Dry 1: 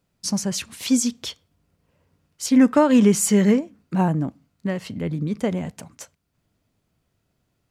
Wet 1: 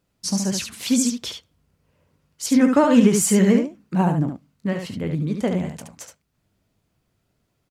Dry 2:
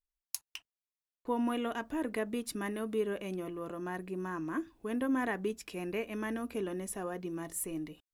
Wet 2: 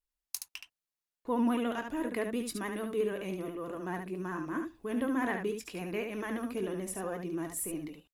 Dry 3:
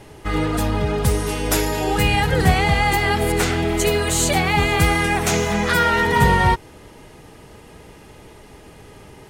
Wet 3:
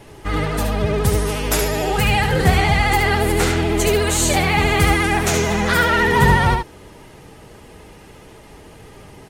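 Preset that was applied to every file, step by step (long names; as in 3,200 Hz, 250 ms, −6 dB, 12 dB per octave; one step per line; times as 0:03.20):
ambience of single reflections 21 ms −11.5 dB, 72 ms −6 dB
pitch vibrato 14 Hz 58 cents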